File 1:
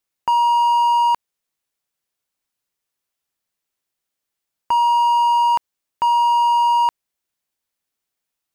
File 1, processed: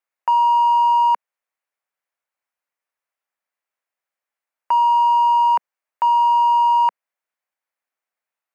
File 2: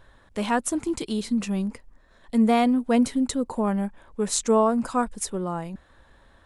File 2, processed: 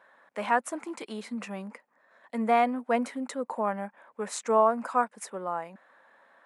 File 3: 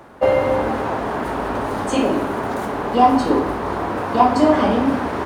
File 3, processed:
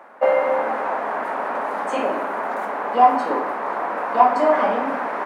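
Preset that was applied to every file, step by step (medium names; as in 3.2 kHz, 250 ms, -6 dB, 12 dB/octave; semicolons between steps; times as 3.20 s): Chebyshev high-pass 210 Hz, order 3; high-order bell 1.1 kHz +12 dB 2.6 oct; trim -11 dB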